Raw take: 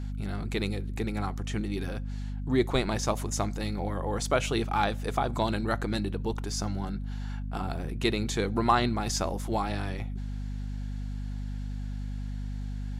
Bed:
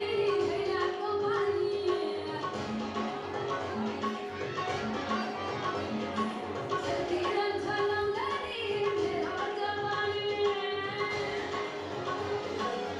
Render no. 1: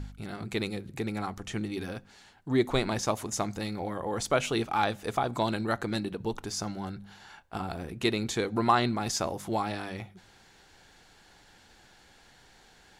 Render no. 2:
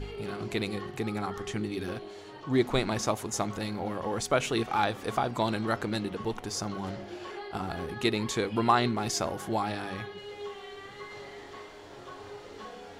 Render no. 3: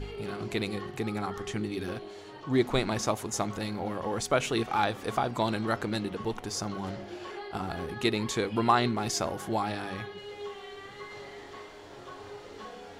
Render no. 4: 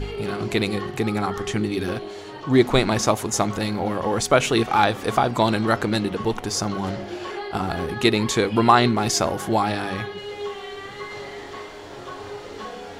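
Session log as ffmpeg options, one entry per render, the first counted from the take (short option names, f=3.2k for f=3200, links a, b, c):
-af "bandreject=f=50:t=h:w=4,bandreject=f=100:t=h:w=4,bandreject=f=150:t=h:w=4,bandreject=f=200:t=h:w=4,bandreject=f=250:t=h:w=4"
-filter_complex "[1:a]volume=-11dB[a];[0:a][a]amix=inputs=2:normalize=0"
-af anull
-af "volume=9dB,alimiter=limit=-3dB:level=0:latency=1"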